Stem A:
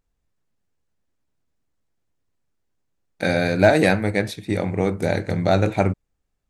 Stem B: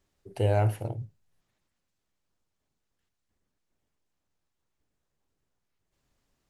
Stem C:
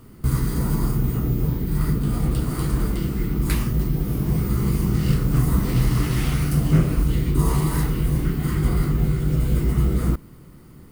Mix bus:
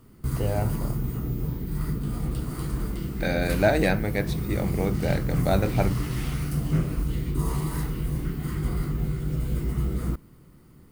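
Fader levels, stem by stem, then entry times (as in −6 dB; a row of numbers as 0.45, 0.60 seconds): −6.0, −3.0, −7.0 decibels; 0.00, 0.00, 0.00 seconds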